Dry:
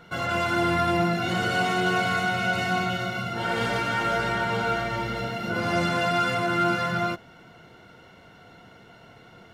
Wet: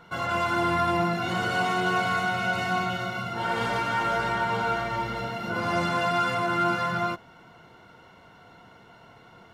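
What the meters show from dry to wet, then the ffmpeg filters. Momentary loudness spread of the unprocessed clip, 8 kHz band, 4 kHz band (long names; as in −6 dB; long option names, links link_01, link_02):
6 LU, −3.0 dB, −3.0 dB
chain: -af "equalizer=frequency=1000:width_type=o:width=0.57:gain=7.5,volume=-3dB"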